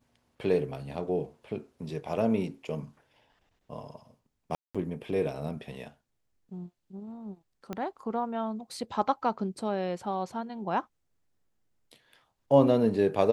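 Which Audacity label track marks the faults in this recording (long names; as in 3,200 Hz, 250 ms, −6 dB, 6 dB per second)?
4.550000	4.750000	drop-out 196 ms
7.730000	7.730000	click −21 dBFS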